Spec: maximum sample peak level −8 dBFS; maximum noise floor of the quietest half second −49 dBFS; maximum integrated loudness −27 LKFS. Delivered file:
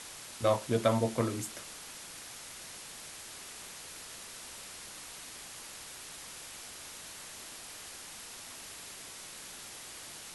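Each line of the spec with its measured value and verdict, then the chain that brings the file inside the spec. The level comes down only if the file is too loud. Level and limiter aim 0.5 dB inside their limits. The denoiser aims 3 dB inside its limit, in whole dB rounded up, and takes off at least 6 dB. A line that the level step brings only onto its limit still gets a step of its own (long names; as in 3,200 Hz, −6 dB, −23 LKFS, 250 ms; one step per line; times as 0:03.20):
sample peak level −13.0 dBFS: in spec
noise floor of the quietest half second −47 dBFS: out of spec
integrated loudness −38.5 LKFS: in spec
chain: broadband denoise 6 dB, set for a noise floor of −47 dBFS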